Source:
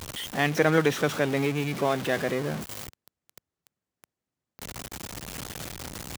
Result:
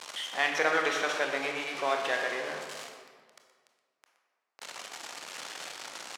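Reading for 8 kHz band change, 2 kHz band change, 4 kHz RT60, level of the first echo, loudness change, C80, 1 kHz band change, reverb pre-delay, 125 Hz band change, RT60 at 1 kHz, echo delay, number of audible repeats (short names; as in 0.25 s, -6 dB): -3.5 dB, +0.5 dB, 1.1 s, -13.0 dB, -3.5 dB, 5.5 dB, -0.5 dB, 22 ms, -26.0 dB, 1.7 s, 0.121 s, 1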